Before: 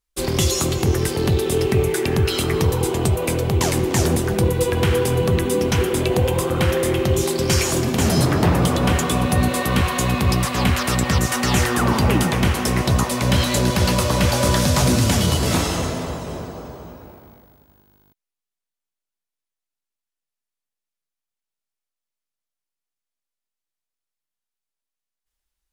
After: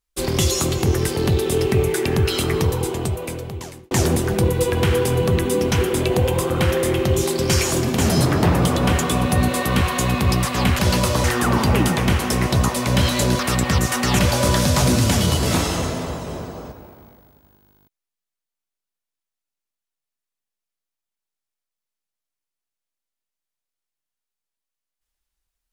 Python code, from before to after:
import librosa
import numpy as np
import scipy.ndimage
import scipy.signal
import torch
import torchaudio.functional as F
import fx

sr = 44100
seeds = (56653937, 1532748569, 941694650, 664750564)

y = fx.edit(x, sr, fx.fade_out_span(start_s=2.5, length_s=1.41),
    fx.swap(start_s=10.79, length_s=0.8, other_s=13.74, other_length_s=0.45),
    fx.cut(start_s=16.72, length_s=0.25), tone=tone)